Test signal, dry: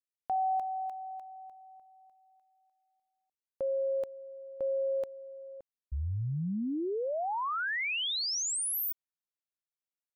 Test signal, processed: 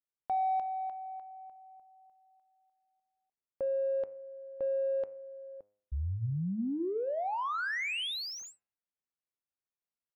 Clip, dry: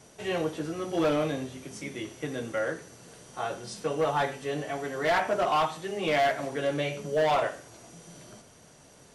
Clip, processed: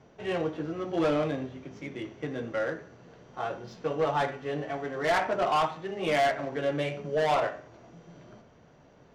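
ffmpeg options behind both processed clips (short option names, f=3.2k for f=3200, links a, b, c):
-af "aresample=16000,aresample=44100,adynamicsmooth=sensitivity=4:basefreq=2.3k,bandreject=f=103.1:t=h:w=4,bandreject=f=206.2:t=h:w=4,bandreject=f=309.3:t=h:w=4,bandreject=f=412.4:t=h:w=4,bandreject=f=515.5:t=h:w=4,bandreject=f=618.6:t=h:w=4,bandreject=f=721.7:t=h:w=4,bandreject=f=824.8:t=h:w=4,bandreject=f=927.9:t=h:w=4,bandreject=f=1.031k:t=h:w=4,bandreject=f=1.1341k:t=h:w=4,bandreject=f=1.2372k:t=h:w=4,bandreject=f=1.3403k:t=h:w=4,bandreject=f=1.4434k:t=h:w=4,bandreject=f=1.5465k:t=h:w=4,bandreject=f=1.6496k:t=h:w=4,bandreject=f=1.7527k:t=h:w=4,bandreject=f=1.8558k:t=h:w=4,bandreject=f=1.9589k:t=h:w=4,bandreject=f=2.062k:t=h:w=4,bandreject=f=2.1651k:t=h:w=4,bandreject=f=2.2682k:t=h:w=4,bandreject=f=2.3713k:t=h:w=4,bandreject=f=2.4744k:t=h:w=4,bandreject=f=2.5775k:t=h:w=4,bandreject=f=2.6806k:t=h:w=4,bandreject=f=2.7837k:t=h:w=4"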